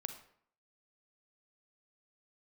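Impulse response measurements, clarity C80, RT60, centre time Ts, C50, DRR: 12.5 dB, 0.60 s, 13 ms, 9.0 dB, 7.0 dB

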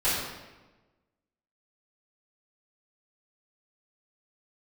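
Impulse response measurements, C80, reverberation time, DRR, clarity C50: 2.5 dB, 1.2 s, -14.0 dB, 0.0 dB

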